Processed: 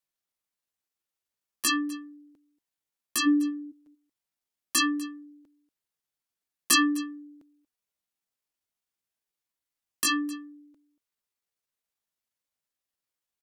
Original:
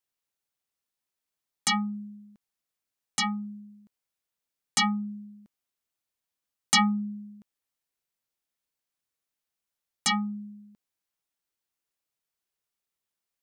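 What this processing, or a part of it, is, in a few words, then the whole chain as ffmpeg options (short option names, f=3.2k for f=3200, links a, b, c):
chipmunk voice: -filter_complex "[0:a]asplit=3[a][b][c];[a]afade=t=out:st=3.26:d=0.02[d];[b]lowshelf=f=300:t=q:w=1.5:g=8.5,afade=t=in:st=3.26:d=0.02,afade=t=out:st=3.71:d=0.02[e];[c]afade=t=in:st=3.71:d=0.02[f];[d][e][f]amix=inputs=3:normalize=0,aecho=1:1:234:0.1,asetrate=62367,aresample=44100,atempo=0.707107"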